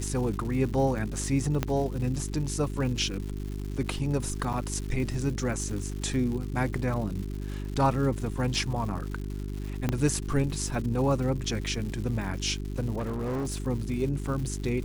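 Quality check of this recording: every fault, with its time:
crackle 240 per s -36 dBFS
hum 50 Hz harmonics 8 -34 dBFS
1.63 s: pop -12 dBFS
4.53–4.54 s: dropout 6.6 ms
9.89 s: pop -13 dBFS
12.98–13.64 s: clipped -27.5 dBFS

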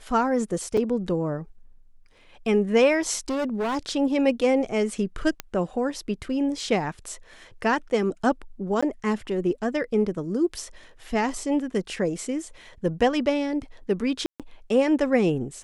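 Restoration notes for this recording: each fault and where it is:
0.77 s: dropout 4.5 ms
3.29–3.77 s: clipped -23 dBFS
5.40 s: pop -12 dBFS
8.81–8.82 s: dropout 15 ms
14.26–14.40 s: dropout 137 ms

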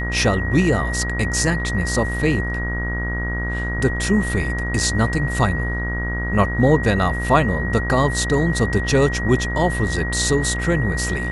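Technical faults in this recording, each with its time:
buzz 60 Hz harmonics 35 -25 dBFS
whine 1.9 kHz -26 dBFS

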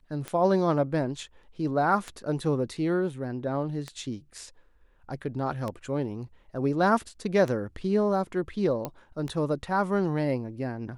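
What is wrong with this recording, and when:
tick 33 1/3 rpm -19 dBFS
8.85 s: pop -17 dBFS

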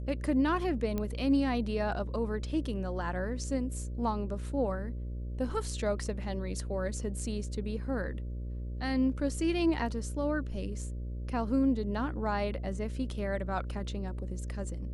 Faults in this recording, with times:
buzz 60 Hz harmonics 10 -37 dBFS
0.98 s: pop -20 dBFS

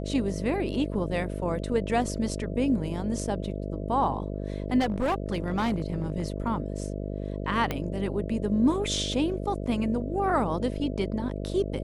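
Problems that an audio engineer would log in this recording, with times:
buzz 50 Hz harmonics 13 -33 dBFS
4.79–6.42 s: clipped -22 dBFS
7.71 s: pop -14 dBFS

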